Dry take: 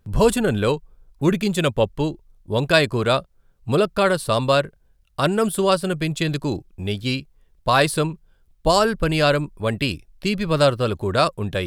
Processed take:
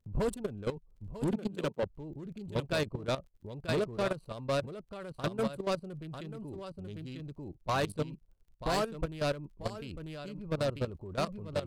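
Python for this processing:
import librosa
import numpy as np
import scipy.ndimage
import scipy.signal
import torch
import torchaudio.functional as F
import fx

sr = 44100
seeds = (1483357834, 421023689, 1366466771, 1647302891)

y = fx.wiener(x, sr, points=25)
y = fx.low_shelf(y, sr, hz=330.0, db=3.0)
y = y + 10.0 ** (-6.0 / 20.0) * np.pad(y, (int(944 * sr / 1000.0), 0))[:len(y)]
y = fx.dmg_crackle(y, sr, seeds[0], per_s=44.0, level_db=-47.0)
y = fx.level_steps(y, sr, step_db=17)
y = fx.highpass(y, sr, hz=160.0, slope=24, at=(1.36, 1.83))
y = 10.0 ** (-16.5 / 20.0) * np.tanh(y / 10.0 ** (-16.5 / 20.0))
y = F.gain(torch.from_numpy(y), -8.0).numpy()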